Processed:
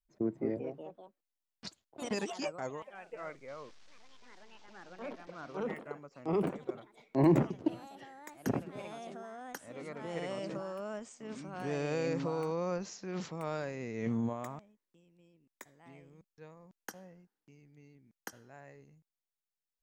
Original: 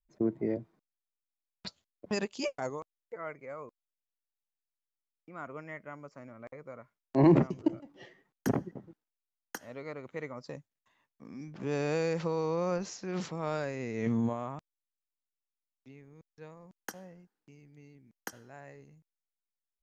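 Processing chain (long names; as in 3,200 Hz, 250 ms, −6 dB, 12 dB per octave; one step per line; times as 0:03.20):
0:03.48–0:05.57: linear delta modulator 32 kbit/s, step −49 dBFS
delay with pitch and tempo change per echo 245 ms, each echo +3 semitones, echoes 3, each echo −6 dB
level −3.5 dB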